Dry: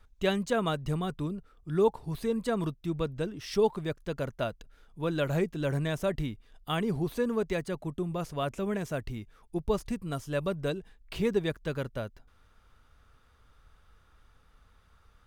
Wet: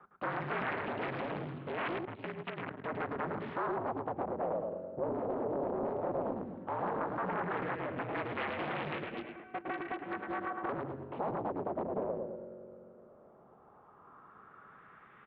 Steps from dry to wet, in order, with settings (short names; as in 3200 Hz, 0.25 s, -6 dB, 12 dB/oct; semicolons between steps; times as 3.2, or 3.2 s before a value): one diode to ground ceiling -28 dBFS; spring tank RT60 3 s, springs 43 ms, chirp 25 ms, DRR 18.5 dB; 8.93–10.69 robotiser 394 Hz; compressor 3:1, threshold -40 dBFS, peak gain reduction 13.5 dB; low shelf 300 Hz +9 dB; feedback echo 0.108 s, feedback 45%, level -4 dB; 2.05–2.84 power-law curve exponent 2; wavefolder -36 dBFS; mistuned SSB -50 Hz 220–3500 Hz; LFO low-pass sine 0.14 Hz 560–2500 Hz; Doppler distortion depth 0.54 ms; gain +5 dB